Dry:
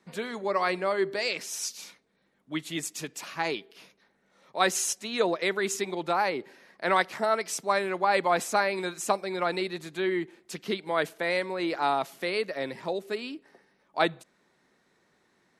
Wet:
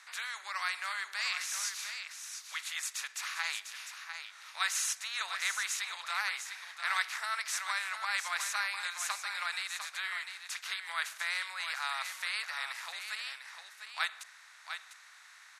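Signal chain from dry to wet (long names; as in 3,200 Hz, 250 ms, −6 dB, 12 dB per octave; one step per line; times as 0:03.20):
compressor on every frequency bin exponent 0.6
high-pass filter 1,300 Hz 24 dB per octave
on a send: single-tap delay 700 ms −8 dB
on the sum: level −6 dB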